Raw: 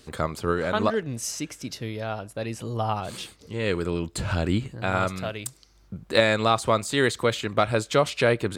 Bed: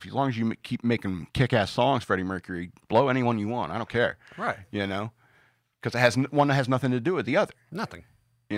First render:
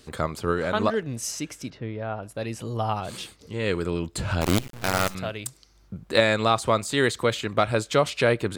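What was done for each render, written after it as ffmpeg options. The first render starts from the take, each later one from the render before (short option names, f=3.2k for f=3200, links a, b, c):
-filter_complex "[0:a]asettb=1/sr,asplit=3[a][b][c];[a]atrim=end=1.704[d];[b]atrim=start=1.7:end=2.23,asetpts=PTS-STARTPTS,afade=t=in:d=0.004:c=qsin,afade=t=out:st=0.526:d=0.004:c=qsin,lowpass=1.9k[e];[c]atrim=start=2.226[f];[d][e]acrossfade=d=0.004:c1=hsin:c2=qsin[g];[g][f]acrossfade=d=0.004:c1=qsin:c2=hsin,asettb=1/sr,asplit=3[h][i][j];[h]atrim=end=4.414[k];[i]atrim=start=4.41:end=5.15,asetpts=PTS-STARTPTS,afade=t=in:d=0.004:c=qsin,afade=t=out:st=0.736:d=0.004:c=qsin,acrusher=bits=4:dc=4:mix=0:aa=0.000001[l];[j]atrim=start=5.146[m];[k][l]acrossfade=d=0.004:c1=hsin:c2=qsin[n];[n][m]acrossfade=d=0.004:c1=qsin:c2=hsin"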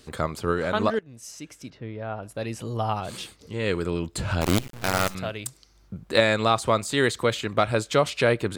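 -filter_complex "[0:a]asplit=2[a][b];[a]atrim=end=0.99,asetpts=PTS-STARTPTS,afade=t=out:st=0.986:d=0.004:c=hsin:silence=0.11885[c];[b]atrim=start=0.99,asetpts=PTS-STARTPTS,afade=t=in:d=1.34:silence=0.11885[d];[c][d]concat=n=2:v=0:a=1"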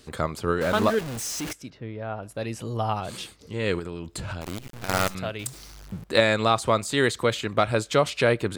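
-filter_complex "[0:a]asettb=1/sr,asplit=3[a][b][c];[a]atrim=end=0.614[d];[b]atrim=start=0.61:end=1.53,asetpts=PTS-STARTPTS,afade=t=in:d=0.004:c=qsin,afade=t=out:st=0.916:d=0.004:c=qsin,aeval=exprs='val(0)+0.5*0.0398*sgn(val(0))':c=same[e];[c]atrim=start=1.526[f];[d][e]acrossfade=d=0.004:c1=hsin:c2=qsin[g];[g][f]acrossfade=d=0.004:c1=qsin:c2=hsin,asettb=1/sr,asplit=3[h][i][j];[h]atrim=end=3.794[k];[i]atrim=start=3.79:end=4.89,asetpts=PTS-STARTPTS,afade=t=in:d=0.004:c=qsin,afade=t=out:st=1.096:d=0.004:c=qsin,acompressor=threshold=-30dB:ratio=4:attack=3.2:release=140:knee=1:detection=peak[l];[j]atrim=start=4.886[m];[k][l]acrossfade=d=0.004:c1=hsin:c2=qsin[n];[n][m]acrossfade=d=0.004:c1=qsin:c2=hsin,asettb=1/sr,asplit=3[o][p][q];[o]atrim=end=5.394[r];[p]atrim=start=5.39:end=6.04,asetpts=PTS-STARTPTS,afade=t=in:d=0.004:c=qsin,afade=t=out:st=0.646:d=0.004:c=qsin,aeval=exprs='val(0)+0.5*0.01*sgn(val(0))':c=same[s];[q]atrim=start=6.036[t];[r][s]acrossfade=d=0.004:c1=hsin:c2=qsin[u];[u][t]acrossfade=d=0.004:c1=qsin:c2=hsin"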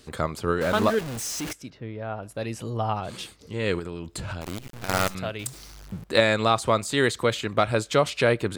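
-filter_complex "[0:a]asettb=1/sr,asplit=3[a][b][c];[a]atrim=end=2.704[d];[b]atrim=start=2.7:end=3.19,asetpts=PTS-STARTPTS,afade=t=in:d=0.004:c=qsin,afade=t=out:st=0.486:d=0.004:c=qsin,highshelf=f=5.3k:g=-9[e];[c]atrim=start=3.186[f];[d][e]acrossfade=d=0.004:c1=hsin:c2=qsin[g];[g][f]acrossfade=d=0.004:c1=qsin:c2=hsin"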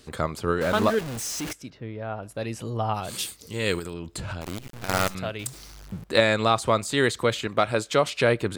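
-filter_complex "[0:a]asettb=1/sr,asplit=3[a][b][c];[a]atrim=end=2.944[d];[b]atrim=start=2.94:end=3.94,asetpts=PTS-STARTPTS,afade=t=in:d=0.004:c=qsin,afade=t=out:st=0.996:d=0.004:c=qsin,aemphasis=mode=production:type=75fm[e];[c]atrim=start=3.936[f];[d][e]acrossfade=d=0.004:c1=hsin:c2=qsin[g];[g][f]acrossfade=d=0.004:c1=qsin:c2=hsin,asettb=1/sr,asplit=3[h][i][j];[h]atrim=end=7.474[k];[i]atrim=start=7.47:end=8.21,asetpts=PTS-STARTPTS,afade=t=in:d=0.004:c=qsin,afade=t=out:st=0.736:d=0.004:c=qsin,lowshelf=f=92:g=-11.5[l];[j]atrim=start=8.206[m];[k][l]acrossfade=d=0.004:c1=hsin:c2=qsin[n];[n][m]acrossfade=d=0.004:c1=qsin:c2=hsin"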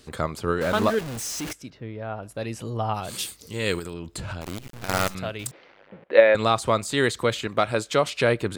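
-filter_complex "[0:a]asettb=1/sr,asplit=3[a][b][c];[a]atrim=end=5.514[d];[b]atrim=start=5.51:end=6.35,asetpts=PTS-STARTPTS,afade=t=in:d=0.004:c=qsin,afade=t=out:st=0.836:d=0.004:c=qsin,highpass=360,equalizer=f=530:t=q:w=4:g=10,equalizer=f=1.2k:t=q:w=4:g=-4,equalizer=f=1.9k:t=q:w=4:g=3,lowpass=f=2.8k:w=0.5412,lowpass=f=2.8k:w=1.3066[e];[c]atrim=start=6.346[f];[d][e]acrossfade=d=0.004:c1=hsin:c2=qsin[g];[g][f]acrossfade=d=0.004:c1=qsin:c2=hsin"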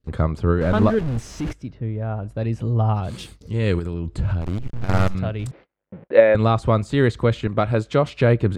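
-af "aemphasis=mode=reproduction:type=riaa,agate=range=-32dB:threshold=-43dB:ratio=16:detection=peak"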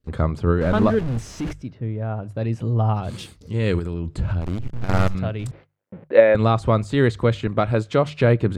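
-af "bandreject=f=50:t=h:w=6,bandreject=f=100:t=h:w=6,bandreject=f=150:t=h:w=6"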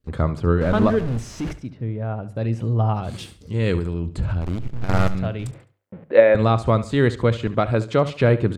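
-af "aecho=1:1:70|140|210:0.168|0.0571|0.0194"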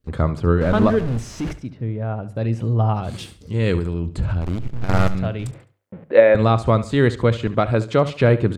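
-af "volume=1.5dB,alimiter=limit=-1dB:level=0:latency=1"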